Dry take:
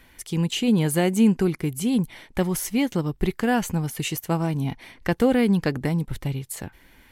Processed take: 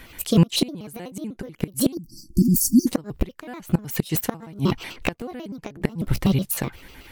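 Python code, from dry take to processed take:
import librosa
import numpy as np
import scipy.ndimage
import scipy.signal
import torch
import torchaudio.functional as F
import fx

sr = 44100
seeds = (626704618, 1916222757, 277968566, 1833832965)

y = fx.pitch_trill(x, sr, semitones=5.5, every_ms=62)
y = fx.spec_erase(y, sr, start_s=1.94, length_s=0.93, low_hz=360.0, high_hz=4400.0)
y = fx.gate_flip(y, sr, shuts_db=-15.0, range_db=-24)
y = y * 10.0 ** (9.0 / 20.0)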